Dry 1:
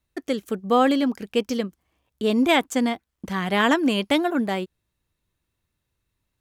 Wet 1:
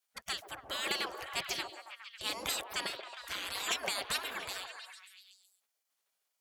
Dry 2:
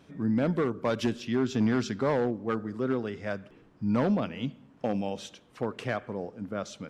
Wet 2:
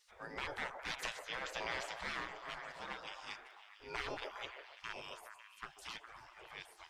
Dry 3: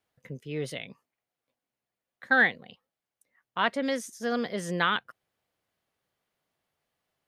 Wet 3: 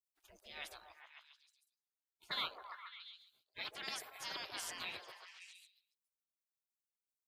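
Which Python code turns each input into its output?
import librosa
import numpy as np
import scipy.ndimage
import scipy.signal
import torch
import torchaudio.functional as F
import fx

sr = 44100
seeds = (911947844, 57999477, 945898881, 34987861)

y = fx.spec_gate(x, sr, threshold_db=-25, keep='weak')
y = fx.echo_stepped(y, sr, ms=137, hz=540.0, octaves=0.7, feedback_pct=70, wet_db=-2)
y = y * librosa.db_to_amplitude(3.0)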